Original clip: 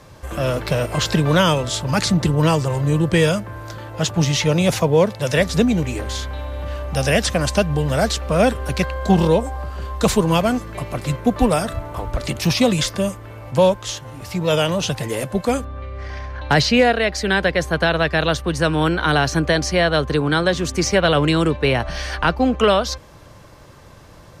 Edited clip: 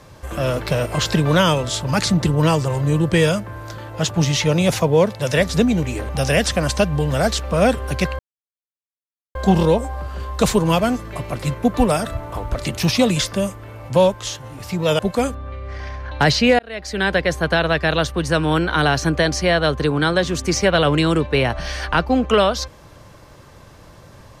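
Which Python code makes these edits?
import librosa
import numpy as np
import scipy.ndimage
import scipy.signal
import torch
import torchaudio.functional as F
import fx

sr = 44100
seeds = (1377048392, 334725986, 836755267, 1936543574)

y = fx.edit(x, sr, fx.cut(start_s=6.09, length_s=0.78),
    fx.insert_silence(at_s=8.97, length_s=1.16),
    fx.cut(start_s=14.61, length_s=0.68),
    fx.fade_in_span(start_s=16.89, length_s=0.53), tone=tone)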